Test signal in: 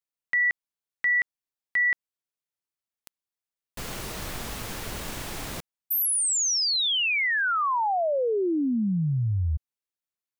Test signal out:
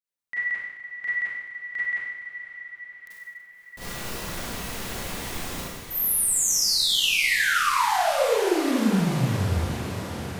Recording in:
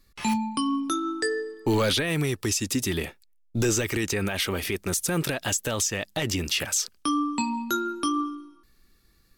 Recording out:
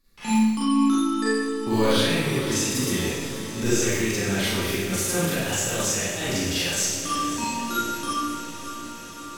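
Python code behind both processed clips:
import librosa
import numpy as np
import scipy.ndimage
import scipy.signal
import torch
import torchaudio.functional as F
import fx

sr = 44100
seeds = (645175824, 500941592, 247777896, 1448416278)

y = fx.echo_diffused(x, sr, ms=539, feedback_pct=72, wet_db=-11.0)
y = fx.rev_schroeder(y, sr, rt60_s=1.1, comb_ms=32, drr_db=-10.0)
y = y * 10.0 ** (-8.5 / 20.0)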